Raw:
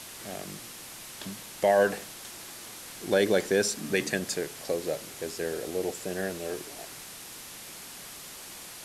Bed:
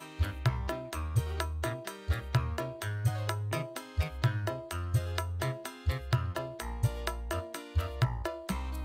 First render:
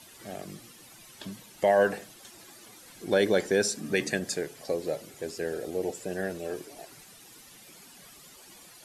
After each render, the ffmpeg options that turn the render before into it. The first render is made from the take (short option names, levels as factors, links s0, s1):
-af "afftdn=nr=12:nf=-44"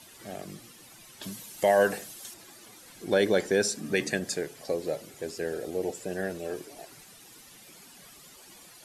-filter_complex "[0:a]asettb=1/sr,asplit=3[s0][s1][s2];[s0]atrim=end=1.224[s3];[s1]atrim=start=1.22:end=2.34,asetpts=PTS-STARTPTS,afade=t=in:d=0.004:c=qsin,afade=t=out:st=1.116:d=0.004:c=qsin,highshelf=f=4900:g=10.5[s4];[s2]atrim=start=2.336[s5];[s3][s4]acrossfade=d=0.004:c1=hsin:c2=qsin[s6];[s6][s5]acrossfade=d=0.004:c1=qsin:c2=hsin"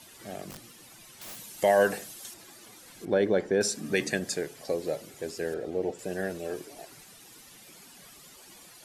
-filter_complex "[0:a]asettb=1/sr,asplit=3[s0][s1][s2];[s0]atrim=end=0.504[s3];[s1]atrim=start=0.5:end=1.38,asetpts=PTS-STARTPTS,afade=t=in:d=0.004:c=qsin,afade=t=out:st=0.876:d=0.004:c=qsin,aeval=exprs='(mod(75*val(0)+1,2)-1)/75':c=same[s4];[s2]atrim=start=1.376[s5];[s3][s4]acrossfade=d=0.004:c1=hsin:c2=qsin[s6];[s6][s5]acrossfade=d=0.004:c1=qsin:c2=hsin,asettb=1/sr,asplit=3[s7][s8][s9];[s7]atrim=end=3.054[s10];[s8]atrim=start=3.05:end=3.61,asetpts=PTS-STARTPTS,afade=t=in:d=0.004:c=qsin,afade=t=out:st=0.556:d=0.004:c=qsin,lowpass=f=1200:p=1[s11];[s9]atrim=start=3.606[s12];[s10][s11]acrossfade=d=0.004:c1=hsin:c2=qsin[s13];[s13][s12]acrossfade=d=0.004:c1=qsin:c2=hsin,asettb=1/sr,asplit=3[s14][s15][s16];[s14]atrim=end=5.544[s17];[s15]atrim=start=5.54:end=5.99,asetpts=PTS-STARTPTS,afade=t=in:d=0.004:c=qsin,afade=t=out:st=0.446:d=0.004:c=qsin,aemphasis=mode=reproduction:type=75fm[s18];[s16]atrim=start=5.986[s19];[s17][s18]acrossfade=d=0.004:c1=hsin:c2=qsin[s20];[s20][s19]acrossfade=d=0.004:c1=qsin:c2=hsin"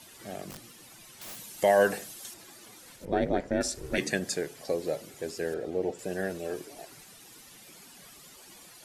-filter_complex "[0:a]asettb=1/sr,asplit=3[s0][s1][s2];[s0]atrim=end=2.964[s3];[s1]atrim=start=2.96:end=3.98,asetpts=PTS-STARTPTS,afade=t=in:d=0.004:c=qsin,afade=t=out:st=1.016:d=0.004:c=qsin,aeval=exprs='val(0)*sin(2*PI*160*n/s)':c=same[s4];[s2]atrim=start=3.976[s5];[s3][s4]acrossfade=d=0.004:c1=hsin:c2=qsin[s6];[s6][s5]acrossfade=d=0.004:c1=qsin:c2=hsin"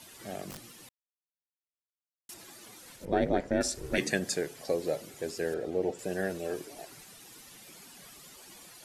-filter_complex "[0:a]asplit=3[s0][s1][s2];[s0]atrim=end=0.89,asetpts=PTS-STARTPTS,afade=t=out:st=0.886:d=0.004:c=hsin[s3];[s1]atrim=start=0.89:end=2.29,asetpts=PTS-STARTPTS,volume=0[s4];[s2]atrim=start=2.29,asetpts=PTS-STARTPTS,afade=t=in:d=0.004:c=hsin[s5];[s3][s4][s5]concat=n=3:v=0:a=1"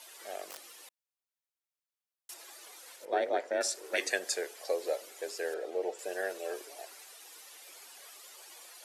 -af "highpass=f=450:w=0.5412,highpass=f=450:w=1.3066"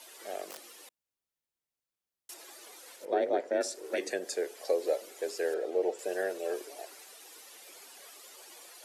-filter_complex "[0:a]acrossover=split=500[s0][s1];[s0]acontrast=80[s2];[s1]alimiter=level_in=1.26:limit=0.0631:level=0:latency=1:release=337,volume=0.794[s3];[s2][s3]amix=inputs=2:normalize=0"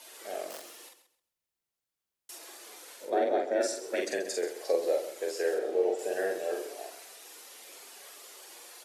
-filter_complex "[0:a]asplit=2[s0][s1];[s1]adelay=46,volume=0.708[s2];[s0][s2]amix=inputs=2:normalize=0,aecho=1:1:132|264|396:0.237|0.0545|0.0125"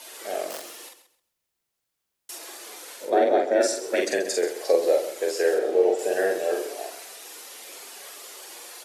-af "volume=2.37"